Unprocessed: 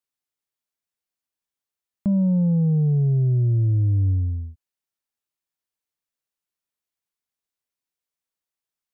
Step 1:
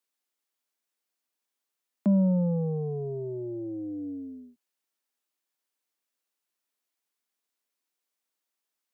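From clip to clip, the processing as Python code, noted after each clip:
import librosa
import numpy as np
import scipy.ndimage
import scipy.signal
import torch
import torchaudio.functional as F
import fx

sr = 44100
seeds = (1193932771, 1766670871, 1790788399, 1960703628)

y = scipy.signal.sosfilt(scipy.signal.butter(6, 210.0, 'highpass', fs=sr, output='sos'), x)
y = y * librosa.db_to_amplitude(3.5)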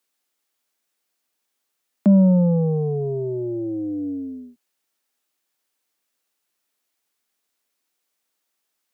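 y = fx.notch(x, sr, hz=1000.0, q=25.0)
y = y * librosa.db_to_amplitude(8.5)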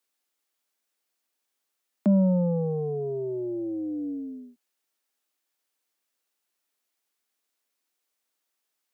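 y = scipy.signal.sosfilt(scipy.signal.butter(2, 190.0, 'highpass', fs=sr, output='sos'), x)
y = y * librosa.db_to_amplitude(-4.0)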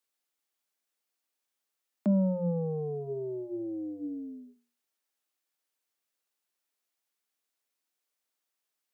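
y = fx.hum_notches(x, sr, base_hz=60, count=7)
y = y * librosa.db_to_amplitude(-4.5)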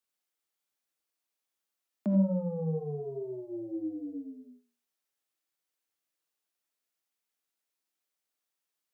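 y = fx.rev_gated(x, sr, seeds[0], gate_ms=110, shape='rising', drr_db=4.5)
y = y * librosa.db_to_amplitude(-3.5)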